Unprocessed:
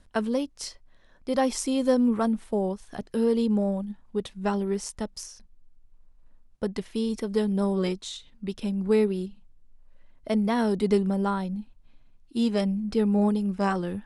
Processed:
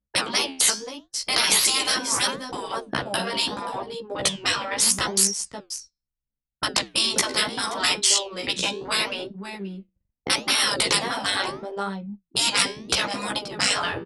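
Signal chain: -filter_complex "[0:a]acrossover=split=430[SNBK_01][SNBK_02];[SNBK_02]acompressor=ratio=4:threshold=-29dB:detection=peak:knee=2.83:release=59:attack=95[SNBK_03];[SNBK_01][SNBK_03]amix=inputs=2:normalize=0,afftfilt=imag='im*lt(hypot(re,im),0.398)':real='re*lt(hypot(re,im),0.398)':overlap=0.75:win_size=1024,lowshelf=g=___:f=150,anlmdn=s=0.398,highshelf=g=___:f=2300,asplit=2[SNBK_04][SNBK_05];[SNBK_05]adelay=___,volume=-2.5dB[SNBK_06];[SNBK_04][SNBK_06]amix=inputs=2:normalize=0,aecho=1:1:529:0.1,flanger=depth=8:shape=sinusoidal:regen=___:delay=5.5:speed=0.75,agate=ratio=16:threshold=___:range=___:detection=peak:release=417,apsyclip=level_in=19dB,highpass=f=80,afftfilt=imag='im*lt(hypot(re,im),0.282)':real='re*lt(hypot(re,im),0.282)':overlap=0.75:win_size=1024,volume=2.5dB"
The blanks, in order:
-8, 9.5, 15, -82, -55dB, -19dB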